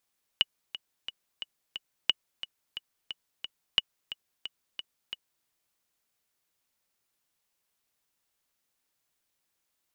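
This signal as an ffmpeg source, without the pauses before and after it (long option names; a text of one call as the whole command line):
ffmpeg -f lavfi -i "aevalsrc='pow(10,(-8.5-14*gte(mod(t,5*60/178),60/178))/20)*sin(2*PI*2930*mod(t,60/178))*exp(-6.91*mod(t,60/178)/0.03)':duration=5.05:sample_rate=44100" out.wav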